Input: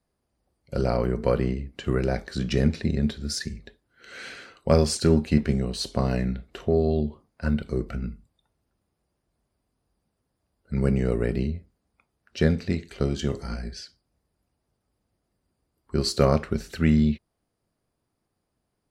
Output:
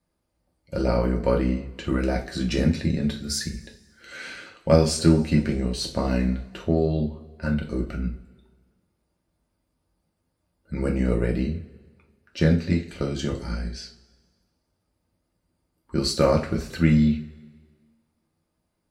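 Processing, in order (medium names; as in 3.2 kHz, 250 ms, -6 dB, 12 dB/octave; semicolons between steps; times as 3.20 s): 1.98–4.17 s: treble shelf 9.9 kHz +8 dB; two-slope reverb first 0.27 s, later 1.6 s, from -21 dB, DRR 0.5 dB; trim -1 dB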